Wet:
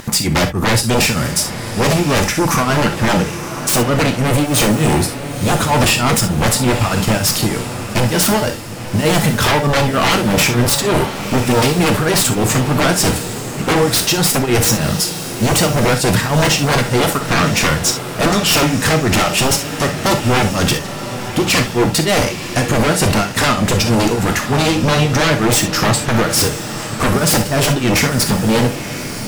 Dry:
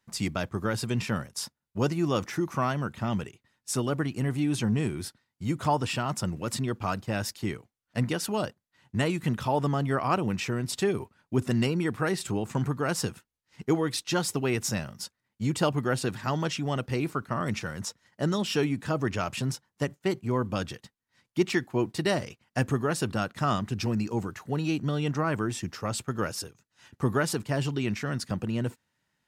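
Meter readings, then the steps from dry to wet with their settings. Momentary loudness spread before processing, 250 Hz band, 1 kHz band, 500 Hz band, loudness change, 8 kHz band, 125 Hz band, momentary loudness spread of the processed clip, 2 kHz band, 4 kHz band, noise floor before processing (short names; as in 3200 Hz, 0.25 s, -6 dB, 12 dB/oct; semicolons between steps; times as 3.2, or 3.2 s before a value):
8 LU, +12.5 dB, +15.0 dB, +13.5 dB, +14.5 dB, +20.5 dB, +13.0 dB, 5 LU, +17.0 dB, +19.5 dB, -82 dBFS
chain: high shelf 8500 Hz +8.5 dB; in parallel at -0.5 dB: limiter -23.5 dBFS, peak gain reduction 12 dB; on the sum: sample leveller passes 2; upward compressor, threshold -32 dBFS; tremolo triangle 3.3 Hz, depth 95%; vibrato 1.5 Hz 17 cents; sine folder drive 14 dB, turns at -8 dBFS; on a send: diffused feedback echo 0.996 s, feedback 46%, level -10 dB; on the sum: non-linear reverb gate 90 ms flat, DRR 5 dB; gain -3 dB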